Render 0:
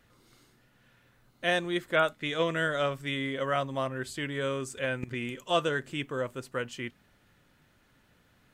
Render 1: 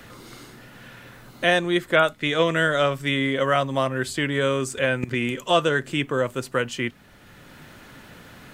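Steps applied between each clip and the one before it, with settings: three-band squash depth 40%; gain +8.5 dB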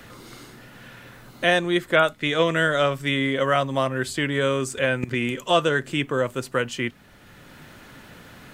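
nothing audible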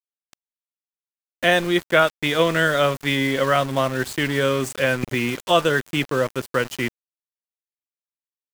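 sample gate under -30.5 dBFS; gain +2 dB

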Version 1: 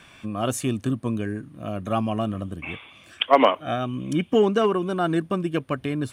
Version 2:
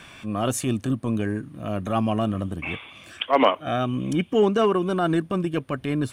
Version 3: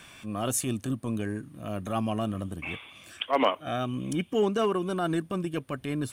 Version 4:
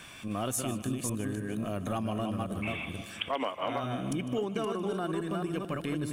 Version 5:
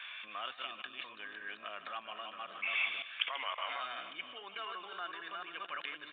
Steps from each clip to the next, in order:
in parallel at -2 dB: compressor, threshold -28 dBFS, peak gain reduction 17 dB; on the sum: transient shaper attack -7 dB, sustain -2 dB
high shelf 6400 Hz +10.5 dB; gain -6 dB
reverse delay 0.274 s, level -3.5 dB; split-band echo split 600 Hz, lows 0.285 s, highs 0.152 s, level -15.5 dB; compressor 5:1, threshold -31 dBFS, peak gain reduction 12 dB; gain +1.5 dB
level quantiser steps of 14 dB; Butterworth band-pass 2700 Hz, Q 0.63; downsampling 8000 Hz; gain +11.5 dB

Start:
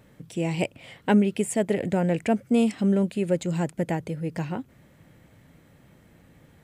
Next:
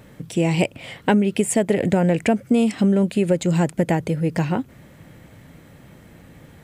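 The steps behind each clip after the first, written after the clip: compressor 6:1, threshold -23 dBFS, peak gain reduction 8 dB; gain +9 dB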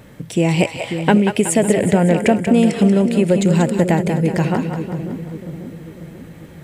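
split-band echo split 500 Hz, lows 0.542 s, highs 0.186 s, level -7 dB; gain +3.5 dB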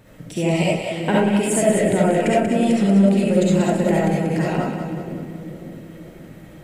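reverb RT60 0.40 s, pre-delay 25 ms, DRR -5.5 dB; gain -8 dB

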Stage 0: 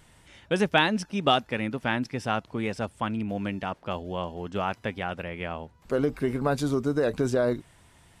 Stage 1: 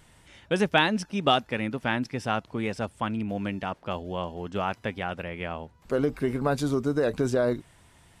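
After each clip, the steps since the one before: nothing audible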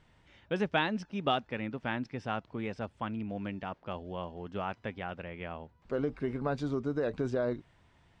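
air absorption 140 m; gain -6.5 dB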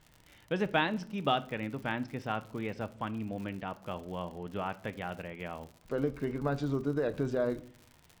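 crackle 89/s -42 dBFS; shoebox room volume 720 m³, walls furnished, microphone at 0.52 m

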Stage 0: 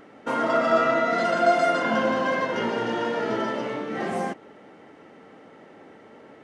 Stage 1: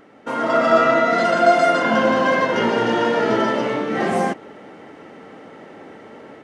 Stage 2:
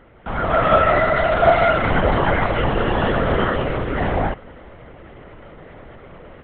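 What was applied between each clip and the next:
AGC gain up to 8 dB
LPC vocoder at 8 kHz whisper

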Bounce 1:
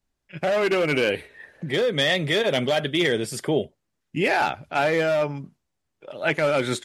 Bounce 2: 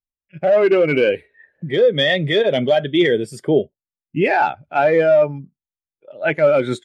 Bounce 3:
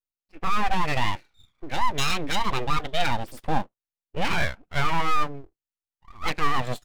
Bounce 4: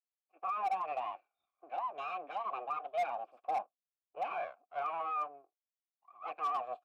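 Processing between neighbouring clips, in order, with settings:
spectral expander 1.5:1; gain +4.5 dB
full-wave rectifier; gain -5 dB
vowel filter a; three-band isolator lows -15 dB, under 290 Hz, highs -16 dB, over 2200 Hz; overloaded stage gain 28.5 dB

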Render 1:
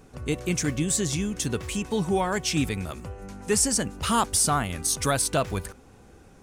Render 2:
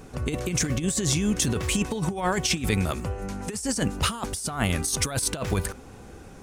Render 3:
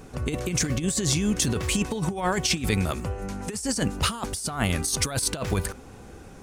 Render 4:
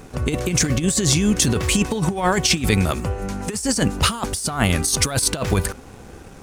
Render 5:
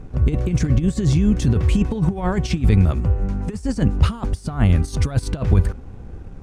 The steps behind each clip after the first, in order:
negative-ratio compressor -28 dBFS, ratio -0.5; gain +3.5 dB
dynamic EQ 4500 Hz, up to +4 dB, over -46 dBFS, Q 5.7
crossover distortion -53.5 dBFS; gain +6.5 dB
RIAA curve playback; gain -7 dB

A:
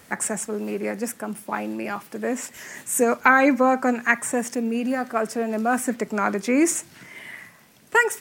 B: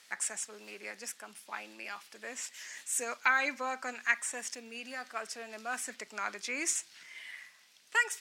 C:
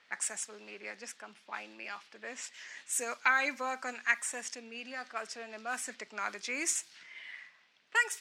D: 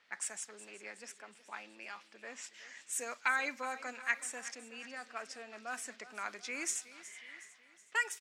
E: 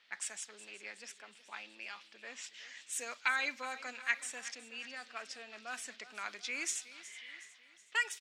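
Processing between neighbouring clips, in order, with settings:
band-pass 4200 Hz, Q 1.1; gain -1 dB
low-pass opened by the level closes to 2400 Hz, open at -32 dBFS
feedback echo 0.369 s, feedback 51%, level -16 dB; gain -4.5 dB
bell 3500 Hz +10.5 dB 1.4 oct; gain -4 dB

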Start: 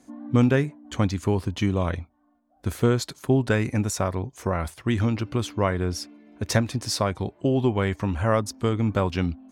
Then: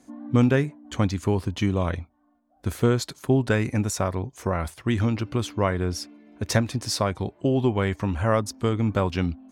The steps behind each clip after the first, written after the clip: nothing audible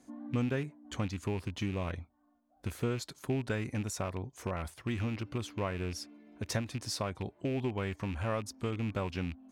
rattling part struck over -25 dBFS, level -24 dBFS; compressor 1.5:1, threshold -35 dBFS, peak gain reduction 7.5 dB; gain -5.5 dB

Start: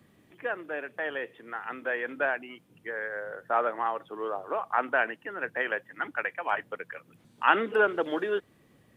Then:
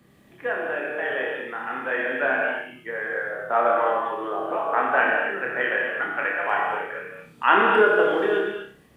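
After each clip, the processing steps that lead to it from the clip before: on a send: flutter echo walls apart 5.2 m, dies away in 0.4 s; on the sum: non-linear reverb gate 0.28 s flat, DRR -0.5 dB; gain +2 dB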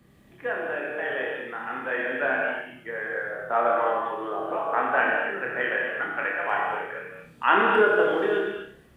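low shelf 83 Hz +11 dB; warbling echo 93 ms, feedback 53%, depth 127 cents, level -21 dB; gain -2.5 dB

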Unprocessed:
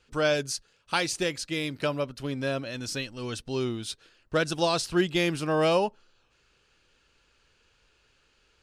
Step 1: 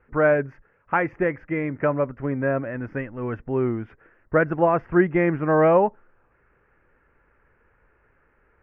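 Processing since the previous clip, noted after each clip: elliptic low-pass 2000 Hz, stop band 50 dB; gain +7 dB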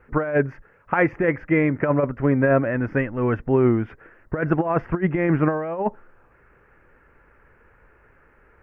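negative-ratio compressor -22 dBFS, ratio -0.5; gain +4 dB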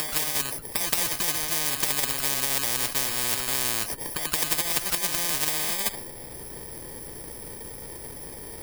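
FFT order left unsorted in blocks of 32 samples; pre-echo 0.173 s -14 dB; spectral compressor 10:1

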